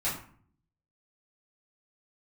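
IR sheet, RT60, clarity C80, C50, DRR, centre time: 0.50 s, 10.0 dB, 5.5 dB, −10.5 dB, 36 ms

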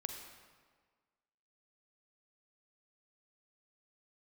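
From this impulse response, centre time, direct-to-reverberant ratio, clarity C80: 43 ms, 4.0 dB, 6.0 dB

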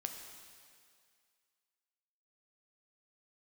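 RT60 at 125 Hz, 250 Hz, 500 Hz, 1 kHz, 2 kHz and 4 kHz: 1.8, 1.9, 2.1, 2.2, 2.2, 2.2 seconds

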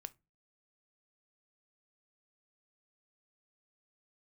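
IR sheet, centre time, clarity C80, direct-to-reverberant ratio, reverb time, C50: 2 ms, 33.5 dB, 13.5 dB, 0.25 s, 24.0 dB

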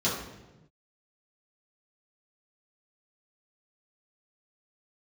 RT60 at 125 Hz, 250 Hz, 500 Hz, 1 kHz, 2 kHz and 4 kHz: 1.8, 1.3, 1.2, 0.95, 0.90, 0.80 seconds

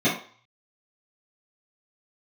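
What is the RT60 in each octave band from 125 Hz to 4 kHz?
0.55, 0.35, 0.40, 0.55, 0.45, 0.45 seconds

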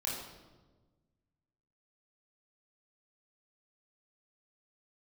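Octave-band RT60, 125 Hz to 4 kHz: 2.1, 1.8, 1.5, 1.1, 0.90, 0.90 seconds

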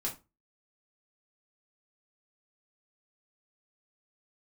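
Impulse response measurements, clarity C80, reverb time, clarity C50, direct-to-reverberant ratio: 19.5 dB, 0.25 s, 11.5 dB, −2.5 dB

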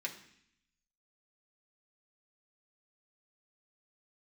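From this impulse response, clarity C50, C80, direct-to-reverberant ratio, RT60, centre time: 10.5 dB, 13.5 dB, −1.0 dB, 0.65 s, 15 ms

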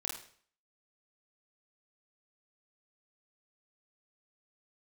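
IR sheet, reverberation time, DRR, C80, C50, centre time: 0.50 s, −0.5 dB, 8.5 dB, 4.0 dB, 32 ms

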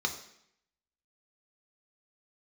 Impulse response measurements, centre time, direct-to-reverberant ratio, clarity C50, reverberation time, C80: 14 ms, 3.0 dB, 10.0 dB, 0.70 s, 12.5 dB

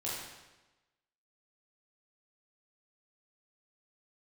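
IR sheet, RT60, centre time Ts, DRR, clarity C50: 1.1 s, 81 ms, −7.5 dB, −1.0 dB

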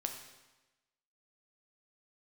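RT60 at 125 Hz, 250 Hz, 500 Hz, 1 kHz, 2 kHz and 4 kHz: 1.1, 1.1, 1.1, 1.1, 1.1, 1.0 seconds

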